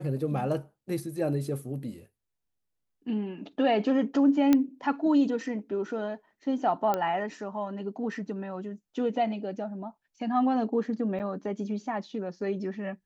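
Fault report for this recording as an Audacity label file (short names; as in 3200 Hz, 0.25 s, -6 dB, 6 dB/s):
4.530000	4.530000	pop -10 dBFS
6.940000	6.940000	pop -15 dBFS
11.190000	11.200000	gap 8.5 ms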